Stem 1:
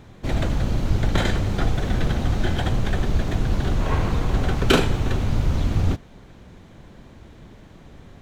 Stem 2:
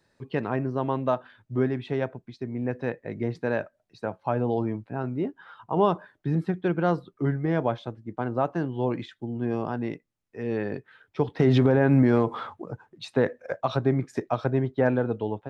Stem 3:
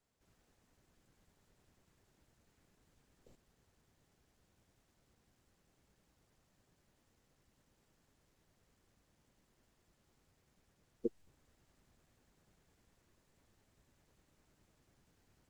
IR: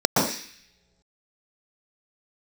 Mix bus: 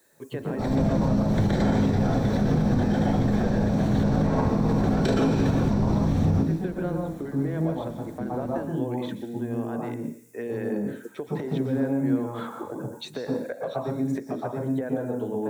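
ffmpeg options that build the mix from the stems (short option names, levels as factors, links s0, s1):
-filter_complex "[0:a]adelay=350,volume=0.531,asplit=2[s0][s1];[s1]volume=0.188[s2];[1:a]acompressor=threshold=0.0282:ratio=6,volume=1.26,asplit=3[s3][s4][s5];[s4]volume=0.0841[s6];[2:a]aexciter=amount=14.7:drive=6.1:freq=5900,volume=0.944[s7];[s5]apad=whole_len=377668[s8];[s0][s8]sidechaincompress=threshold=0.00501:ratio=8:attack=16:release=211[s9];[s3][s7]amix=inputs=2:normalize=0,highpass=f=210:w=0.5412,highpass=f=210:w=1.3066,alimiter=level_in=1.33:limit=0.0631:level=0:latency=1:release=336,volume=0.75,volume=1[s10];[3:a]atrim=start_sample=2205[s11];[s2][s6]amix=inputs=2:normalize=0[s12];[s12][s11]afir=irnorm=-1:irlink=0[s13];[s9][s10][s13]amix=inputs=3:normalize=0,alimiter=limit=0.2:level=0:latency=1:release=83"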